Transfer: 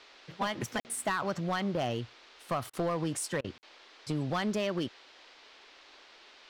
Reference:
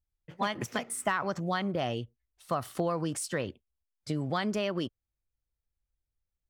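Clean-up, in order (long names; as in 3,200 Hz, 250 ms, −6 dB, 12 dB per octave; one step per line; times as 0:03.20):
clipped peaks rebuilt −24.5 dBFS
repair the gap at 0:00.80/0:03.58, 49 ms
repair the gap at 0:02.70/0:03.41, 32 ms
noise reduction from a noise print 29 dB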